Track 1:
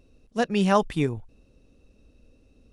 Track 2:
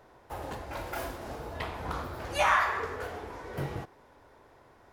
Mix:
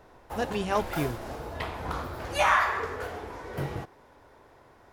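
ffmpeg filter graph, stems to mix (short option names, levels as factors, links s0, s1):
-filter_complex "[0:a]flanger=delay=4:depth=4:regen=-68:speed=0.75:shape=triangular,volume=0.841[s0];[1:a]volume=1.26[s1];[s0][s1]amix=inputs=2:normalize=0"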